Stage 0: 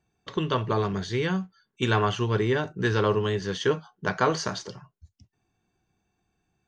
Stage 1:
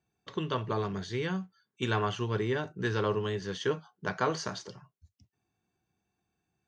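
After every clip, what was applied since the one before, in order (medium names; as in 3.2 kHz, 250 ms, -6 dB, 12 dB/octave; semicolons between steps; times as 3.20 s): high-pass 67 Hz; trim -6 dB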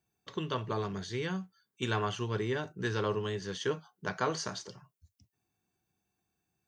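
treble shelf 7.5 kHz +11 dB; trim -2.5 dB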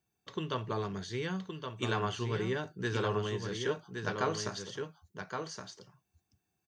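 delay 1119 ms -6 dB; trim -1 dB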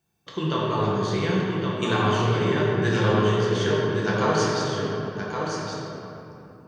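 simulated room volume 140 m³, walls hard, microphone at 0.77 m; trim +5 dB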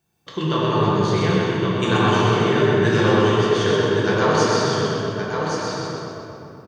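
feedback delay 127 ms, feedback 53%, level -3.5 dB; trim +3 dB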